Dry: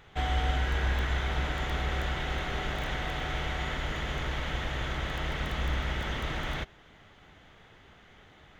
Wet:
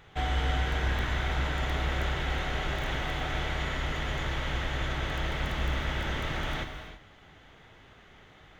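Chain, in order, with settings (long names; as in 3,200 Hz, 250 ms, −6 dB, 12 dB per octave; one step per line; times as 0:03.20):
reverb whose tail is shaped and stops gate 360 ms flat, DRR 5.5 dB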